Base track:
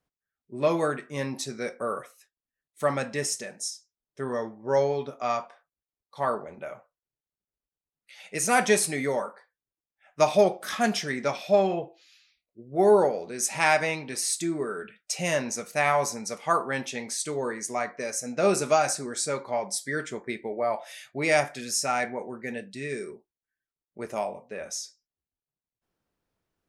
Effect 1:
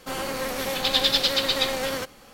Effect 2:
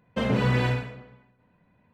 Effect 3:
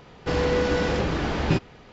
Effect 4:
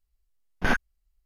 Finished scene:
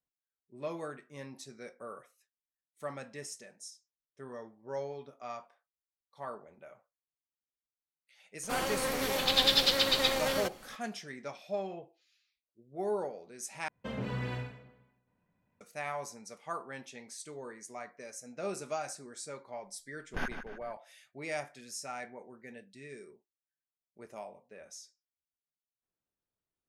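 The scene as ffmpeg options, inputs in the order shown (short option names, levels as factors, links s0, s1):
-filter_complex "[0:a]volume=0.188[s0];[4:a]asplit=2[s1][s2];[s2]adelay=150,lowpass=f=5000:p=1,volume=0.376,asplit=2[s3][s4];[s4]adelay=150,lowpass=f=5000:p=1,volume=0.5,asplit=2[s5][s6];[s6]adelay=150,lowpass=f=5000:p=1,volume=0.5,asplit=2[s7][s8];[s8]adelay=150,lowpass=f=5000:p=1,volume=0.5,asplit=2[s9][s10];[s10]adelay=150,lowpass=f=5000:p=1,volume=0.5,asplit=2[s11][s12];[s12]adelay=150,lowpass=f=5000:p=1,volume=0.5[s13];[s1][s3][s5][s7][s9][s11][s13]amix=inputs=7:normalize=0[s14];[s0]asplit=2[s15][s16];[s15]atrim=end=13.684[s17];[2:a]atrim=end=1.93,asetpts=PTS-STARTPTS,volume=0.224[s18];[s16]atrim=start=15.606[s19];[1:a]atrim=end=2.33,asetpts=PTS-STARTPTS,volume=0.631,afade=t=in:d=0.004:c=hsin,afade=t=out:st=2.326:d=0.004:c=hsin,adelay=8430[s20];[s14]atrim=end=1.25,asetpts=PTS-STARTPTS,volume=0.251,afade=t=in:d=0.004:c=hsin,afade=t=out:st=1.246:d=0.004:c=hsin,adelay=19520[s21];[s17][s18]acrossfade=d=0.004:c1=hsin:c2=hsin[s22];[s22][s19]acrossfade=d=0.004:c1=hsin:c2=hsin[s23];[s23][s20][s21]amix=inputs=3:normalize=0"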